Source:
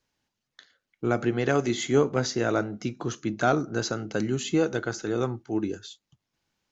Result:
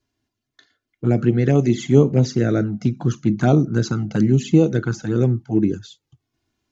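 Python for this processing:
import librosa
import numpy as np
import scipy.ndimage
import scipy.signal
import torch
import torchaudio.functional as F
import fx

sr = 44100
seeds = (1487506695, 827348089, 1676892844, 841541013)

p1 = fx.peak_eq(x, sr, hz=150.0, db=13.5, octaves=2.3)
p2 = fx.rider(p1, sr, range_db=10, speed_s=2.0)
p3 = p1 + F.gain(torch.from_numpy(p2), 0.0).numpy()
p4 = fx.env_flanger(p3, sr, rest_ms=2.9, full_db=-6.0)
y = F.gain(torch.from_numpy(p4), -4.0).numpy()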